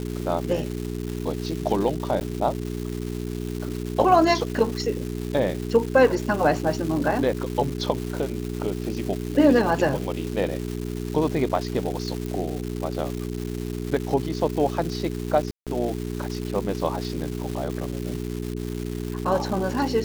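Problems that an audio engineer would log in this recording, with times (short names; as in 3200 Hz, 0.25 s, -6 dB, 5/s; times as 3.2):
crackle 560/s -30 dBFS
hum 60 Hz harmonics 7 -30 dBFS
2.2–2.21 gap 9.6 ms
12.26 pop -18 dBFS
15.51–15.67 gap 0.157 s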